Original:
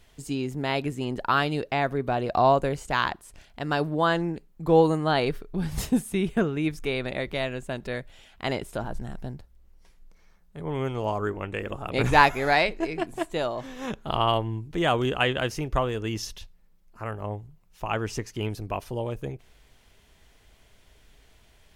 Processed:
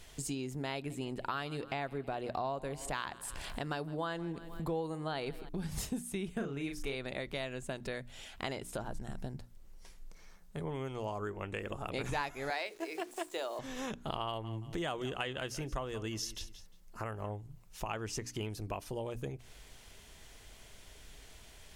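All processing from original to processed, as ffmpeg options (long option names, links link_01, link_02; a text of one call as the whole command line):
ffmpeg -i in.wav -filter_complex "[0:a]asettb=1/sr,asplit=3[link_01][link_02][link_03];[link_01]atrim=end=0.744[link_04];[link_02]atrim=start=0.74:end=5.49,asetpts=PTS-STARTPTS,afade=type=in:duration=0.004:curve=qsin,afade=type=out:start_time=4.746:duration=0.004:curve=qsin,equalizer=frequency=6200:width=3.2:gain=-7,acompressor=mode=upward:threshold=-31dB:ratio=2.5:attack=3.2:release=140:knee=2.83:detection=peak,aecho=1:1:160|320|480|640:0.0794|0.0469|0.0277|0.0163,atrim=end_sample=209475[link_05];[link_03]atrim=start=5.486[link_06];[link_04][link_05]acrossfade=duration=0.004:curve1=hsin:curve2=qsin[link_07];[link_07][link_06]acrossfade=duration=0.004:curve1=qsin:curve2=hsin,asettb=1/sr,asplit=3[link_08][link_09][link_10];[link_08]atrim=end=6.354[link_11];[link_09]atrim=start=6.35:end=6.95,asetpts=PTS-STARTPTS,afade=type=in:duration=0.004:curve=qsin,afade=type=out:start_time=0.596:duration=0.004:curve=qsin,asplit=2[link_12][link_13];[link_13]adelay=36,volume=-5dB[link_14];[link_12][link_14]amix=inputs=2:normalize=0,atrim=end_sample=26460,asubboost=boost=7:cutoff=64[link_15];[link_10]atrim=start=6.946[link_16];[link_11][link_15]acrossfade=duration=0.004:curve1=hsin:curve2=qsin[link_17];[link_17][link_16]acrossfade=duration=0.004:curve1=qsin:curve2=hsin,asettb=1/sr,asplit=3[link_18][link_19][link_20];[link_18]atrim=end=12.504[link_21];[link_19]atrim=start=12.5:end=13.59,asetpts=PTS-STARTPTS,afade=type=in:duration=0.004:curve=qsin,afade=type=out:start_time=1.086:duration=0.004:curve=qsin,highpass=frequency=320:width=0.5412,highpass=frequency=320:width=1.3066,bandreject=frequency=60:width_type=h:width=6,bandreject=frequency=120:width_type=h:width=6,bandreject=frequency=180:width_type=h:width=6,bandreject=frequency=240:width_type=h:width=6,bandreject=frequency=300:width_type=h:width=6,bandreject=frequency=360:width_type=h:width=6,bandreject=frequency=420:width_type=h:width=6,bandreject=frequency=480:width_type=h:width=6,acrusher=bits=9:dc=4:mix=0:aa=0.000001[link_22];[link_20]atrim=start=13.586[link_23];[link_21][link_22]acrossfade=duration=0.004:curve1=hsin:curve2=qsin[link_24];[link_24][link_23]acrossfade=duration=0.004:curve1=qsin:curve2=hsin,asettb=1/sr,asplit=3[link_25][link_26][link_27];[link_25]atrim=end=14.264[link_28];[link_26]atrim=start=14.26:end=17.37,asetpts=PTS-STARTPTS,afade=type=in:duration=0.004:curve=qsin,afade=type=out:start_time=3.106:duration=0.004:curve=qsin,bandreject=frequency=2400:width=27,aecho=1:1:177|354:0.126|0.0264,atrim=end_sample=137151[link_29];[link_27]atrim=start=17.366[link_30];[link_28][link_29]acrossfade=duration=0.004:curve1=hsin:curve2=qsin[link_31];[link_31][link_30]acrossfade=duration=0.004:curve1=qsin:curve2=hsin,equalizer=frequency=7900:width_type=o:width=1.7:gain=6,bandreject=frequency=60:width_type=h:width=6,bandreject=frequency=120:width_type=h:width=6,bandreject=frequency=180:width_type=h:width=6,bandreject=frequency=240:width_type=h:width=6,bandreject=frequency=300:width_type=h:width=6,acompressor=threshold=-40dB:ratio=4,volume=2.5dB" out.wav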